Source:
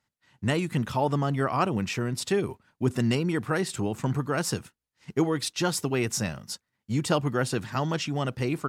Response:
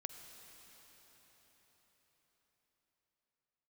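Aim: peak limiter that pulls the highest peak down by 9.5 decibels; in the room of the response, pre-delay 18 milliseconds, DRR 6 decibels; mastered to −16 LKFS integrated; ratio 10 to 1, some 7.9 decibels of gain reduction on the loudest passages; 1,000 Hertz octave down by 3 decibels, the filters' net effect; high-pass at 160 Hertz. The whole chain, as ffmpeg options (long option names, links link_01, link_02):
-filter_complex "[0:a]highpass=160,equalizer=frequency=1000:width_type=o:gain=-4,acompressor=threshold=-28dB:ratio=10,alimiter=level_in=2.5dB:limit=-24dB:level=0:latency=1,volume=-2.5dB,asplit=2[link_01][link_02];[1:a]atrim=start_sample=2205,adelay=18[link_03];[link_02][link_03]afir=irnorm=-1:irlink=0,volume=-3dB[link_04];[link_01][link_04]amix=inputs=2:normalize=0,volume=20dB"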